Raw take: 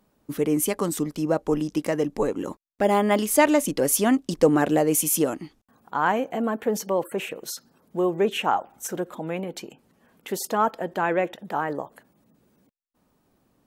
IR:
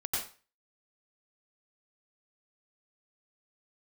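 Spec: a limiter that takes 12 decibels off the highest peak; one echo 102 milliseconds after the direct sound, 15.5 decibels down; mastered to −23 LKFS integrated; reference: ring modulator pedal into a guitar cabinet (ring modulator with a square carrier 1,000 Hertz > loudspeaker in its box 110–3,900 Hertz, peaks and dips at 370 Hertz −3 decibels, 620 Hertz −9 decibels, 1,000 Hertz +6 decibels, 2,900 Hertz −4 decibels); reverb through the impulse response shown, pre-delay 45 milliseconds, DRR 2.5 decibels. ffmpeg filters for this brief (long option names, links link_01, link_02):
-filter_complex "[0:a]alimiter=limit=-17dB:level=0:latency=1,aecho=1:1:102:0.168,asplit=2[link_01][link_02];[1:a]atrim=start_sample=2205,adelay=45[link_03];[link_02][link_03]afir=irnorm=-1:irlink=0,volume=-7dB[link_04];[link_01][link_04]amix=inputs=2:normalize=0,aeval=exprs='val(0)*sgn(sin(2*PI*1000*n/s))':channel_layout=same,highpass=110,equalizer=frequency=370:width_type=q:width=4:gain=-3,equalizer=frequency=620:width_type=q:width=4:gain=-9,equalizer=frequency=1000:width_type=q:width=4:gain=6,equalizer=frequency=2900:width_type=q:width=4:gain=-4,lowpass=frequency=3900:width=0.5412,lowpass=frequency=3900:width=1.3066,volume=4dB"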